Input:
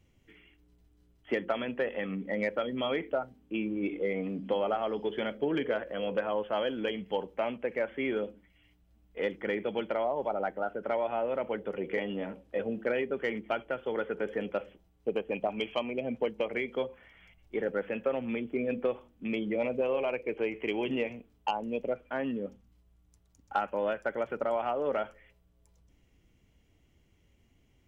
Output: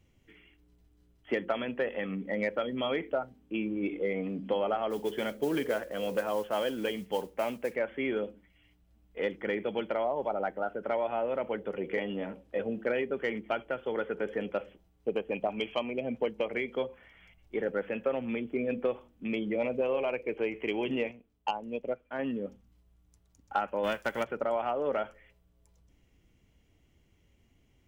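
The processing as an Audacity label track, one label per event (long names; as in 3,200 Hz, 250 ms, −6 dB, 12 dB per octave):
4.900000	7.760000	noise that follows the level under the signal 22 dB
21.110000	22.190000	expander for the loud parts, over −44 dBFS
23.830000	24.230000	spectral envelope flattened exponent 0.6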